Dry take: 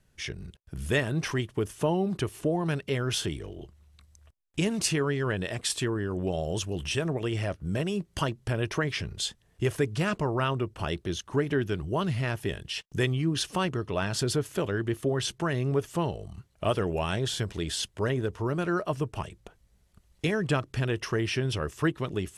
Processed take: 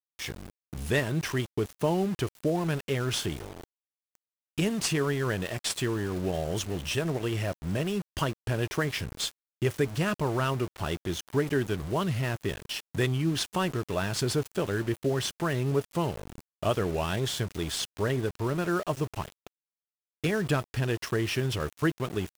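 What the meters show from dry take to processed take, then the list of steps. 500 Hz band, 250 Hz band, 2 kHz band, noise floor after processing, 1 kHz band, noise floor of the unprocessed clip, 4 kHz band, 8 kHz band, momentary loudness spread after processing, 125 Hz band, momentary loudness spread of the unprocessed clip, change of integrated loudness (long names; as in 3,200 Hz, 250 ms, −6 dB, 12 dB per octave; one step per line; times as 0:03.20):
0.0 dB, 0.0 dB, −0.5 dB, below −85 dBFS, 0.0 dB, −66 dBFS, −0.5 dB, −0.5 dB, 6 LU, −0.5 dB, 6 LU, 0.0 dB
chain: variable-slope delta modulation 64 kbit/s
centre clipping without the shift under −37.5 dBFS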